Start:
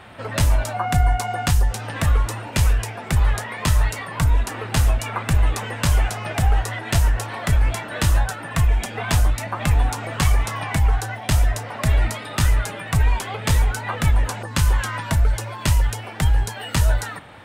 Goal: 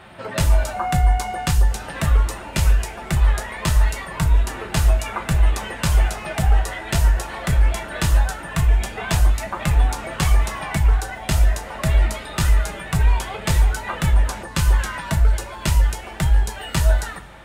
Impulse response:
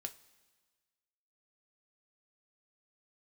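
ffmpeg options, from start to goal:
-filter_complex "[1:a]atrim=start_sample=2205[a];[0:a][a]afir=irnorm=-1:irlink=0,volume=2.5dB"

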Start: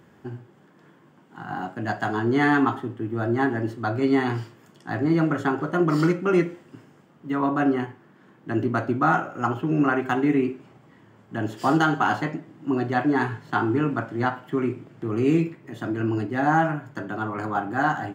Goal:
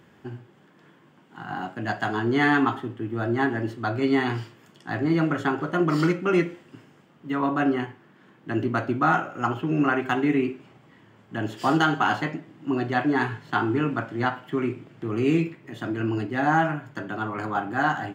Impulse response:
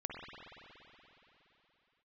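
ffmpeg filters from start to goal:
-af "equalizer=f=2.9k:w=0.97:g=5.5,volume=-1.5dB"

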